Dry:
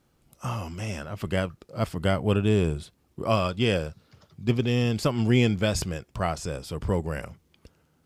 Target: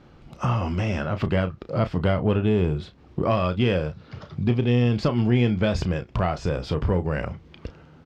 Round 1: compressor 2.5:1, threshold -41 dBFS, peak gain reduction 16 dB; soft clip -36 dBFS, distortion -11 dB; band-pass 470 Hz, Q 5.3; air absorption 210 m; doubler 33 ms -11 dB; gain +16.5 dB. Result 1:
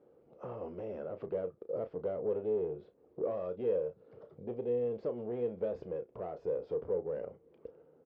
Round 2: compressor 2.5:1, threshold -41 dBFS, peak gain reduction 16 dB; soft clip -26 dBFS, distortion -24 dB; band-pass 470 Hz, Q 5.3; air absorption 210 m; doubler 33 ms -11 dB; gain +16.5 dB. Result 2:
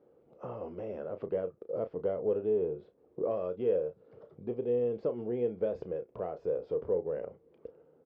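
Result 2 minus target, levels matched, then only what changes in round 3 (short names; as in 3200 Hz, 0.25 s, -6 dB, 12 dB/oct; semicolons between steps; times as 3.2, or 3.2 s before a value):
500 Hz band +6.0 dB
remove: band-pass 470 Hz, Q 5.3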